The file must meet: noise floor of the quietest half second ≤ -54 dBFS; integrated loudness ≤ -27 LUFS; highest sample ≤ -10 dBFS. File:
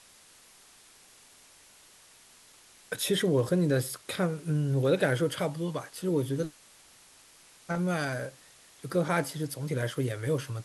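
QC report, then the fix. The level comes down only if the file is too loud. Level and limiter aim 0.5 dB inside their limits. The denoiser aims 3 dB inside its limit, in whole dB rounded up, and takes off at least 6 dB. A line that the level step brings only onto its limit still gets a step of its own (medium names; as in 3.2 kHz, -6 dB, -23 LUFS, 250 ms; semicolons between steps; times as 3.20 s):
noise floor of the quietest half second -57 dBFS: pass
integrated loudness -30.0 LUFS: pass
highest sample -12.5 dBFS: pass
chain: none needed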